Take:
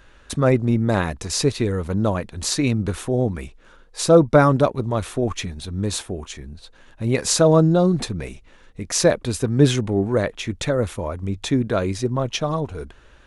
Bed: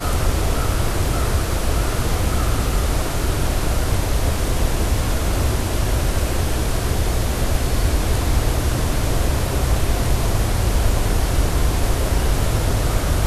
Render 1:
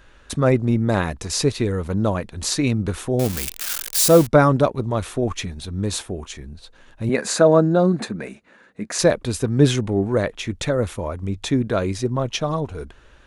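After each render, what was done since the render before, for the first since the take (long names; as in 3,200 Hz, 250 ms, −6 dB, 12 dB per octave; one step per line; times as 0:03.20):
0:03.19–0:04.27: spike at every zero crossing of −13 dBFS
0:07.09–0:08.99: loudspeaker in its box 210–9,600 Hz, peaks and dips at 210 Hz +9 dB, 620 Hz +3 dB, 1,600 Hz +7 dB, 3,200 Hz −7 dB, 5,500 Hz −9 dB, 7,900 Hz −4 dB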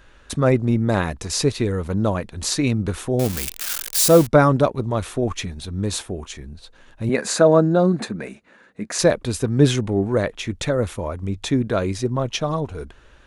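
no processing that can be heard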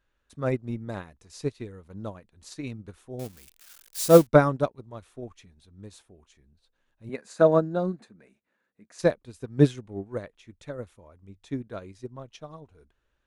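expander for the loud parts 2.5 to 1, over −25 dBFS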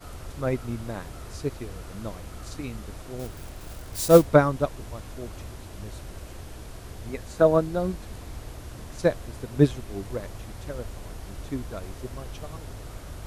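mix in bed −20.5 dB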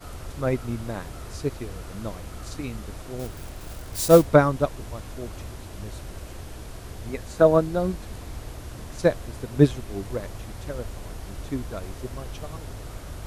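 level +2 dB
brickwall limiter −3 dBFS, peak gain reduction 3 dB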